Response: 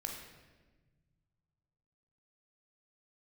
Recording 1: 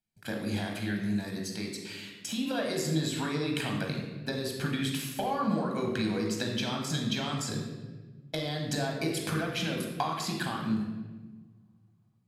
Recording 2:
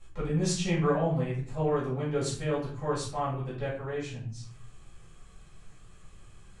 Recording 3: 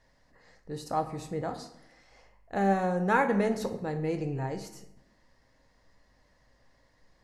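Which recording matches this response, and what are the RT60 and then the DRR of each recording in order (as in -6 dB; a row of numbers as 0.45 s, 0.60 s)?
1; 1.3 s, 0.45 s, 0.85 s; 0.5 dB, -9.5 dB, 6.0 dB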